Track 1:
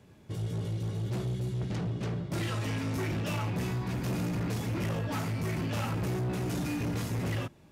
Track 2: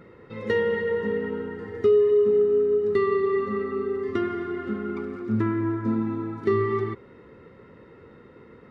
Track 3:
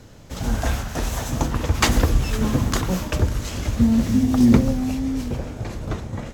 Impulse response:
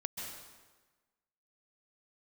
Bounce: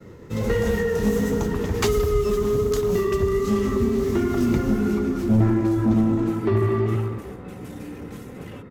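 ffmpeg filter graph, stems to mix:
-filter_complex "[0:a]equalizer=f=4.8k:w=1.5:g=-6,aecho=1:1:3.9:0.7,adelay=1150,volume=-7dB[a];[1:a]lowshelf=f=330:g=11.5,flanger=delay=9.3:depth=9.7:regen=-30:speed=1.4:shape=sinusoidal,asoftclip=type=tanh:threshold=-18.5dB,volume=3dB,asplit=2[b][c];[c]volume=-4dB[d];[2:a]equalizer=f=14k:t=o:w=0.27:g=7,volume=-6.5dB[e];[3:a]atrim=start_sample=2205[f];[d][f]afir=irnorm=-1:irlink=0[g];[a][b][e][g]amix=inputs=4:normalize=0,agate=range=-33dB:threshold=-36dB:ratio=3:detection=peak,acrossover=split=210|3000[h][i][j];[i]acompressor=threshold=-21dB:ratio=6[k];[h][k][j]amix=inputs=3:normalize=0"

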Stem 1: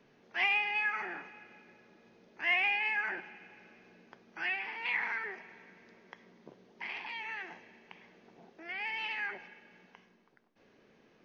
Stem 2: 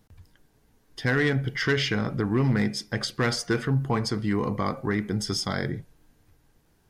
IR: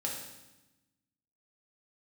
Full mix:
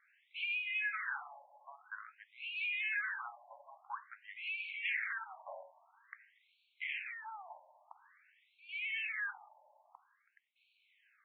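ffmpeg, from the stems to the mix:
-filter_complex "[0:a]acompressor=threshold=-35dB:ratio=6,volume=2dB[a];[1:a]asoftclip=type=hard:threshold=-18dB,volume=-11dB[b];[a][b]amix=inputs=2:normalize=0,afftfilt=real='re*between(b*sr/1024,750*pow(3200/750,0.5+0.5*sin(2*PI*0.49*pts/sr))/1.41,750*pow(3200/750,0.5+0.5*sin(2*PI*0.49*pts/sr))*1.41)':imag='im*between(b*sr/1024,750*pow(3200/750,0.5+0.5*sin(2*PI*0.49*pts/sr))/1.41,750*pow(3200/750,0.5+0.5*sin(2*PI*0.49*pts/sr))*1.41)':win_size=1024:overlap=0.75"

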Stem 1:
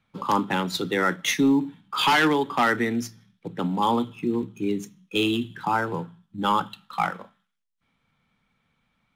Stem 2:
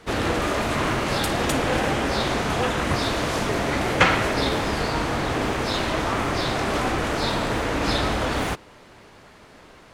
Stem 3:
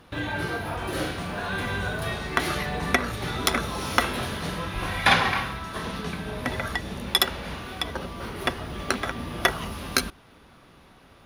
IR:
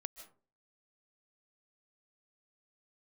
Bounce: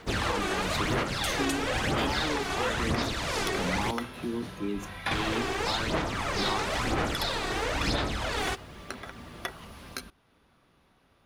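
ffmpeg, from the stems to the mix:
-filter_complex "[0:a]alimiter=limit=-18dB:level=0:latency=1,volume=-5.5dB[a];[1:a]equalizer=f=4.6k:t=o:w=3:g=5.5,acrusher=bits=9:mix=0:aa=0.000001,aphaser=in_gain=1:out_gain=1:delay=2.7:decay=0.6:speed=1:type=sinusoidal,volume=-8.5dB,asplit=3[b][c][d];[b]atrim=end=3.91,asetpts=PTS-STARTPTS,afade=t=out:st=3.906:d=0.004:c=hsin[e];[c]atrim=start=3.91:end=5.11,asetpts=PTS-STARTPTS,volume=0[f];[d]atrim=start=5.11,asetpts=PTS-STARTPTS,afade=t=in:d=0.004:c=hsin[g];[e][f][g]concat=n=3:v=0:a=1[h];[2:a]volume=-12dB[i];[a][h][i]amix=inputs=3:normalize=0,alimiter=limit=-17.5dB:level=0:latency=1:release=415"

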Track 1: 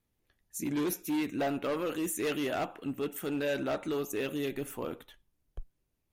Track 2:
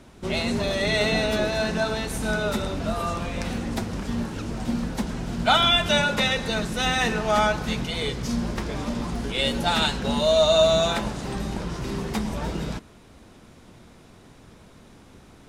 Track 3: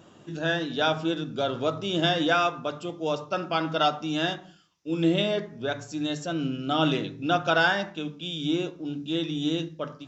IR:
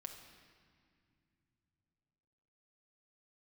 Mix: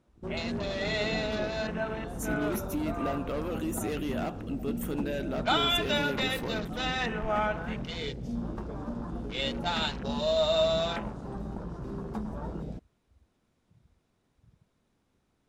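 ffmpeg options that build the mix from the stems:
-filter_complex "[0:a]lowshelf=f=340:g=6,acompressor=threshold=-30dB:ratio=6,adelay=1650,volume=-0.5dB[a];[1:a]afwtdn=0.0224,volume=-7.5dB[b];[2:a]lowpass=1.3k,volume=-19dB[c];[a][b][c]amix=inputs=3:normalize=0"

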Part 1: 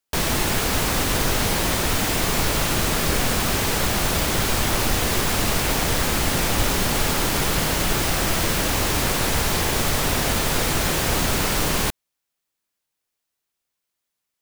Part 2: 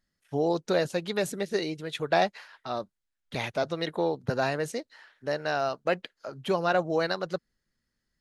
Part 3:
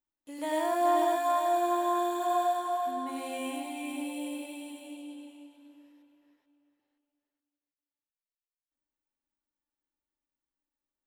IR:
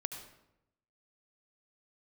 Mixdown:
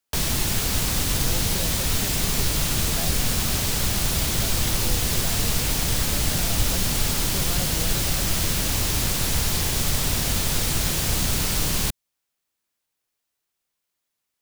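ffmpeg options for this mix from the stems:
-filter_complex "[0:a]volume=0.5dB[a];[1:a]adelay=850,volume=-3dB[b];[a][b]amix=inputs=2:normalize=0,acrossover=split=200|3000[c][d][e];[d]acompressor=threshold=-35dB:ratio=3[f];[c][f][e]amix=inputs=3:normalize=0"

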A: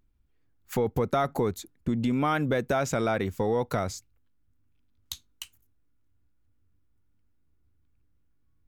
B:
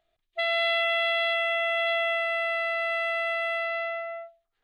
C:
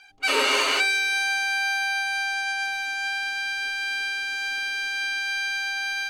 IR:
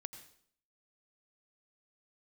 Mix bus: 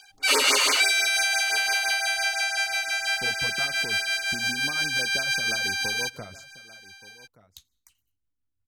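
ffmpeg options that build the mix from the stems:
-filter_complex "[0:a]adelay=2450,volume=-12dB,asplit=3[a][b][c];[b]volume=-10.5dB[d];[c]volume=-16.5dB[e];[1:a]adelay=250,volume=-10dB[f];[2:a]highshelf=f=3.6k:g=11.5,volume=0.5dB,asplit=2[g][h];[h]volume=-21dB[i];[3:a]atrim=start_sample=2205[j];[d][j]afir=irnorm=-1:irlink=0[k];[e][i]amix=inputs=2:normalize=0,aecho=0:1:1176:1[l];[a][f][g][k][l]amix=inputs=5:normalize=0,tremolo=f=5.8:d=0.4,afftfilt=real='re*(1-between(b*sr/1024,290*pow(3500/290,0.5+0.5*sin(2*PI*6*pts/sr))/1.41,290*pow(3500/290,0.5+0.5*sin(2*PI*6*pts/sr))*1.41))':imag='im*(1-between(b*sr/1024,290*pow(3500/290,0.5+0.5*sin(2*PI*6*pts/sr))/1.41,290*pow(3500/290,0.5+0.5*sin(2*PI*6*pts/sr))*1.41))':win_size=1024:overlap=0.75"

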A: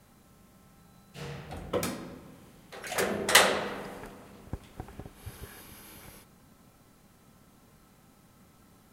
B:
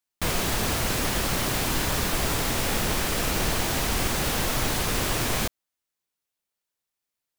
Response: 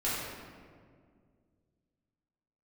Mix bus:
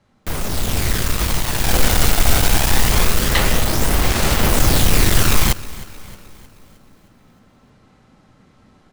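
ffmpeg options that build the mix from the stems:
-filter_complex "[0:a]lowpass=5k,volume=-4dB,asplit=2[a][b];[b]volume=-9dB[c];[1:a]lowshelf=f=120:g=8.5,aphaser=in_gain=1:out_gain=1:delay=1.4:decay=0.46:speed=0.24:type=sinusoidal,aeval=exprs='0.316*(cos(1*acos(clip(val(0)/0.316,-1,1)))-cos(1*PI/2))+0.0891*(cos(8*acos(clip(val(0)/0.316,-1,1)))-cos(8*PI/2))':c=same,adelay=50,volume=-1dB,afade=t=in:st=1.52:d=0.27:silence=0.473151,asplit=2[d][e];[e]volume=-19dB[f];[2:a]atrim=start_sample=2205[g];[c][g]afir=irnorm=-1:irlink=0[h];[f]aecho=0:1:311|622|933|1244|1555|1866|2177:1|0.47|0.221|0.104|0.0488|0.0229|0.0108[i];[a][d][h][i]amix=inputs=4:normalize=0,dynaudnorm=f=420:g=3:m=7dB"

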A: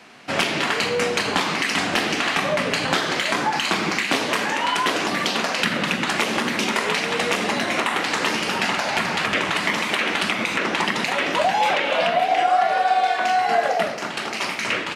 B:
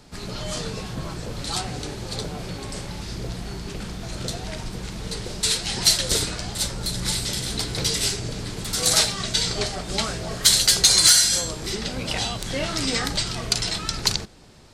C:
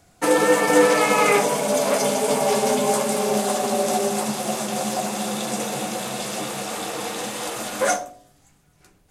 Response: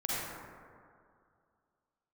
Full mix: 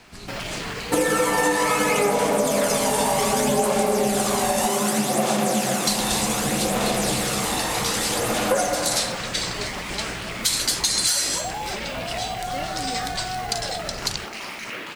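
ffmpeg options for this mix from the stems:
-filter_complex "[0:a]alimiter=limit=-19dB:level=0:latency=1:release=72,acrusher=bits=5:mode=log:mix=0:aa=0.000001,volume=-4.5dB[a];[1:a]volume=-5.5dB,asplit=3[b][c][d];[b]atrim=end=4.66,asetpts=PTS-STARTPTS,afade=t=out:st=4.656:d=0.004:c=hsin[e];[c]atrim=start=4.66:end=5.87,asetpts=PTS-STARTPTS,volume=0[f];[d]atrim=start=5.87,asetpts=PTS-STARTPTS,afade=t=in:d=0.004:c=hsin[g];[e][f][g]concat=n=3:v=0:a=1[h];[2:a]aphaser=in_gain=1:out_gain=1:delay=1.1:decay=0.51:speed=0.65:type=sinusoidal,adelay=700,volume=-1dB,asplit=2[i][j];[j]volume=-10dB[k];[3:a]atrim=start_sample=2205[l];[k][l]afir=irnorm=-1:irlink=0[m];[a][h][i][m]amix=inputs=4:normalize=0,highshelf=f=7.6k:g=4.5,acompressor=threshold=-17dB:ratio=6"

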